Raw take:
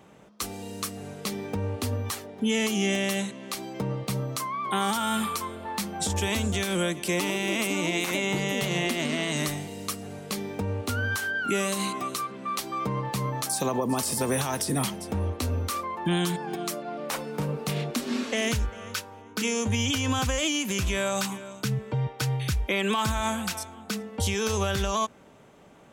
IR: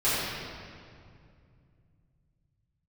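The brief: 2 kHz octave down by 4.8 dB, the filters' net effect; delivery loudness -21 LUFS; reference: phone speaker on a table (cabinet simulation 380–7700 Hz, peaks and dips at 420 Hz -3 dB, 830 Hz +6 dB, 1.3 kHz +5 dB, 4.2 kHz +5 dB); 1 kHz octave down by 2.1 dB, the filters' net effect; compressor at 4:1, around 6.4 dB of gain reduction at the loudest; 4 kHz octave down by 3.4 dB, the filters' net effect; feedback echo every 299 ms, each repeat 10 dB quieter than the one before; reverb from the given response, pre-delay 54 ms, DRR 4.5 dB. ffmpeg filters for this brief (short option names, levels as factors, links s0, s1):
-filter_complex "[0:a]equalizer=f=1000:t=o:g=-6.5,equalizer=f=2000:t=o:g=-4.5,equalizer=f=4000:t=o:g=-4.5,acompressor=threshold=0.0282:ratio=4,aecho=1:1:299|598|897|1196:0.316|0.101|0.0324|0.0104,asplit=2[s0][s1];[1:a]atrim=start_sample=2205,adelay=54[s2];[s1][s2]afir=irnorm=-1:irlink=0,volume=0.112[s3];[s0][s3]amix=inputs=2:normalize=0,highpass=f=380:w=0.5412,highpass=f=380:w=1.3066,equalizer=f=420:t=q:w=4:g=-3,equalizer=f=830:t=q:w=4:g=6,equalizer=f=1300:t=q:w=4:g=5,equalizer=f=4200:t=q:w=4:g=5,lowpass=f=7700:w=0.5412,lowpass=f=7700:w=1.3066,volume=5.62"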